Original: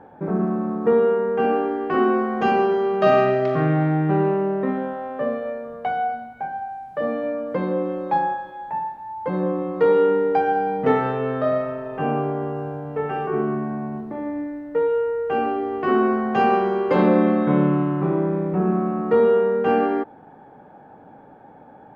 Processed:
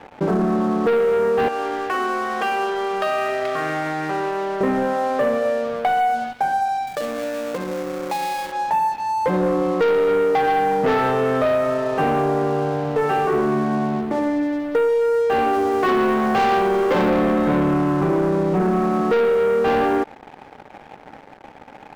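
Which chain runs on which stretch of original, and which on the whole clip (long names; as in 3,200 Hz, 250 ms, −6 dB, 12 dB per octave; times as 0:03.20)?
0:01.48–0:04.61: high-pass filter 1,300 Hz 6 dB per octave + downward compressor 3 to 1, threshold −30 dBFS
0:06.87–0:08.52: gap after every zero crossing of 0.12 ms + notch filter 3,100 Hz, Q 15 + downward compressor, threshold −33 dBFS
0:15.53–0:17.09: mu-law and A-law mismatch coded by mu + mains-hum notches 50/100/150/200/250/300/350/400 Hz
whole clip: low-shelf EQ 210 Hz −7.5 dB; leveller curve on the samples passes 3; downward compressor 4 to 1, threshold −17 dBFS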